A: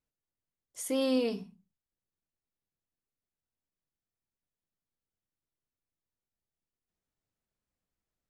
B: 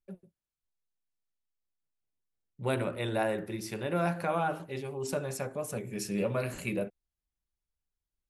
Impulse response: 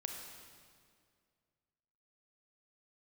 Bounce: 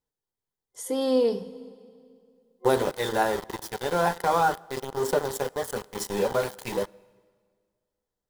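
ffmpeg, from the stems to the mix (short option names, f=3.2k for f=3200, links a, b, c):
-filter_complex "[0:a]volume=-1.5dB,asplit=2[a][b];[b]volume=-8.5dB[c];[1:a]highpass=f=360:p=1,aeval=exprs='val(0)*gte(abs(val(0)),0.015)':c=same,aphaser=in_gain=1:out_gain=1:delay=1.4:decay=0.26:speed=0.39:type=triangular,volume=-0.5dB,asplit=2[d][e];[e]volume=-18.5dB[f];[2:a]atrim=start_sample=2205[g];[c][f]amix=inputs=2:normalize=0[h];[h][g]afir=irnorm=-1:irlink=0[i];[a][d][i]amix=inputs=3:normalize=0,superequalizer=7b=2.24:9b=2:12b=0.398,dynaudnorm=f=510:g=7:m=6dB"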